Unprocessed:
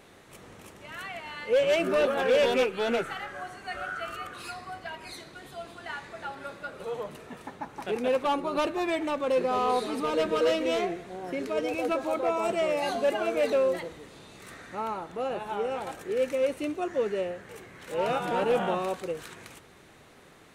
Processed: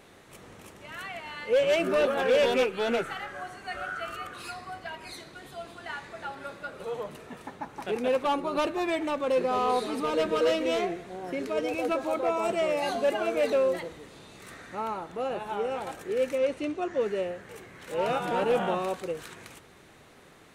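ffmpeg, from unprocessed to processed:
-filter_complex "[0:a]asettb=1/sr,asplit=3[a][b][c];[a]atrim=end=16.384[d];[b]atrim=start=16.38:end=17.01,asetpts=PTS-STARTPTS,afade=t=in:d=0.004:c=qsin,afade=t=out:st=0.626:d=0.004:c=qsin,lowpass=6.9k[e];[c]atrim=start=17.006[f];[d][e]acrossfade=d=0.004:c1=hsin:c2=qsin[g];[g][f]acrossfade=d=0.004:c1=qsin:c2=hsin"

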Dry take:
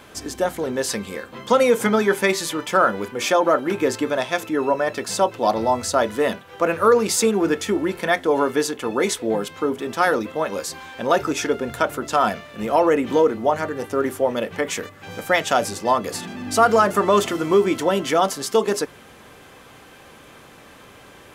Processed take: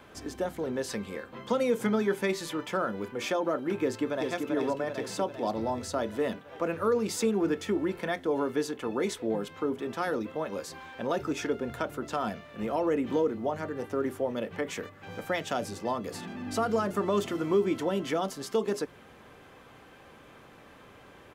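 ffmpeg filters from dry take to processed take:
-filter_complex "[0:a]asplit=2[a][b];[b]afade=t=in:st=3.81:d=0.01,afade=t=out:st=4.31:d=0.01,aecho=0:1:390|780|1170|1560|1950|2340|2730|3120|3510|3900:0.595662|0.38718|0.251667|0.163584|0.106329|0.0691141|0.0449242|0.0292007|0.0189805|0.0123373[c];[a][c]amix=inputs=2:normalize=0,equalizer=f=9.9k:t=o:w=2.4:g=-9,acrossover=split=400|3000[d][e][f];[e]acompressor=threshold=-30dB:ratio=2[g];[d][g][f]amix=inputs=3:normalize=0,volume=-6dB"

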